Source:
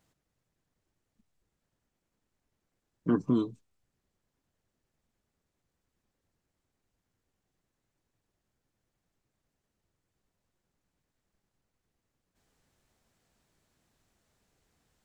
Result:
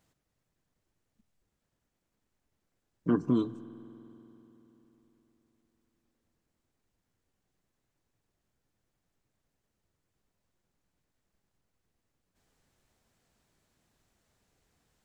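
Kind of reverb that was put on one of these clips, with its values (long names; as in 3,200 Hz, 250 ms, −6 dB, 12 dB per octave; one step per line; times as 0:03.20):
spring reverb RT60 3.9 s, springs 48 ms, chirp 65 ms, DRR 15.5 dB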